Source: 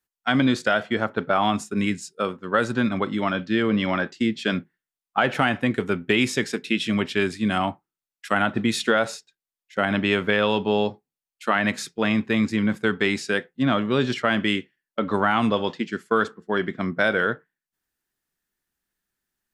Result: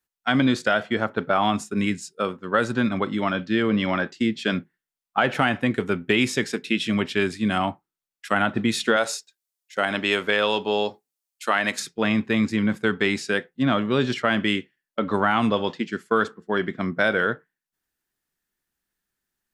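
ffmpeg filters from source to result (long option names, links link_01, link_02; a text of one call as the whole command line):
ffmpeg -i in.wav -filter_complex "[0:a]asettb=1/sr,asplit=3[link_01][link_02][link_03];[link_01]atrim=end=8.964[link_04];[link_02]atrim=start=8.96:end=11.8,asetpts=PTS-STARTPTS,afade=type=in:duration=0.004:curve=qsin,afade=type=out:start_time=2.836:duration=0.004:curve=qsin,bass=frequency=250:gain=-11,treble=frequency=4000:gain=8[link_05];[link_03]atrim=start=11.796[link_06];[link_04][link_05]acrossfade=duration=0.004:curve1=hsin:curve2=qsin[link_07];[link_07][link_06]acrossfade=duration=0.004:curve1=qsin:curve2=hsin" out.wav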